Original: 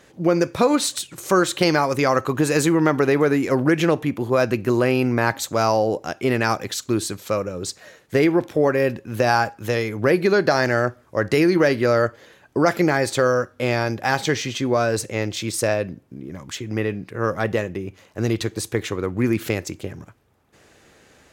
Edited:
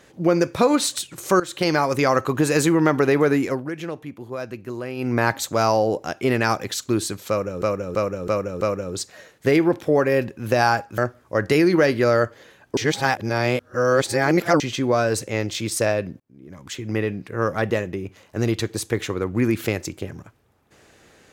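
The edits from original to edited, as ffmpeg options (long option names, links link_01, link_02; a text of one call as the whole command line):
ffmpeg -i in.wav -filter_complex "[0:a]asplit=12[link_01][link_02][link_03][link_04][link_05][link_06][link_07][link_08][link_09][link_10][link_11][link_12];[link_01]atrim=end=1.4,asetpts=PTS-STARTPTS,afade=type=out:start_time=1.396:duration=0.004:curve=hsin:silence=0.16788[link_13];[link_02]atrim=start=1.4:end=3.62,asetpts=PTS-STARTPTS,afade=type=in:duration=0.57:curve=qsin:silence=0.16788,afade=type=out:start_time=2.02:duration=0.2:silence=0.251189[link_14];[link_03]atrim=start=3.62:end=4.96,asetpts=PTS-STARTPTS,volume=-12dB[link_15];[link_04]atrim=start=4.96:end=7.622,asetpts=PTS-STARTPTS,afade=type=in:duration=0.2:silence=0.251189[link_16];[link_05]atrim=start=7.288:end=7.622[link_17];[link_06]atrim=start=7.288:end=7.622[link_18];[link_07]atrim=start=7.288:end=7.622[link_19];[link_08]atrim=start=7.288:end=9.662[link_20];[link_09]atrim=start=10.798:end=12.592[link_21];[link_10]atrim=start=12.588:end=14.422,asetpts=PTS-STARTPTS,areverse[link_22];[link_11]atrim=start=14.418:end=16.02,asetpts=PTS-STARTPTS,afade=type=out:start_time=1.598:duration=0.004:curve=hsin[link_23];[link_12]atrim=start=16.02,asetpts=PTS-STARTPTS,afade=type=in:duration=0.66[link_24];[link_13][link_14][link_15][link_16]concat=n=4:v=0:a=1[link_25];[link_25][link_17]acrossfade=duration=0.004:curve1=hsin:curve2=hsin[link_26];[link_26][link_18]acrossfade=duration=0.004:curve1=hsin:curve2=hsin[link_27];[link_27][link_19]acrossfade=duration=0.004:curve1=hsin:curve2=hsin[link_28];[link_28][link_20]acrossfade=duration=0.004:curve1=hsin:curve2=hsin[link_29];[link_29][link_21]acrossfade=duration=0.004:curve1=hsin:curve2=hsin[link_30];[link_30][link_22]acrossfade=duration=0.004:curve1=hsin:curve2=hsin[link_31];[link_23][link_24]concat=n=2:v=0:a=1[link_32];[link_31][link_32]acrossfade=duration=0.004:curve1=hsin:curve2=hsin" out.wav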